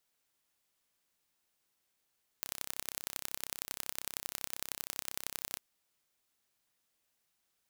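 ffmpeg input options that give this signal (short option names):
-f lavfi -i "aevalsrc='0.398*eq(mod(n,1345),0)*(0.5+0.5*eq(mod(n,4035),0))':d=3.16:s=44100"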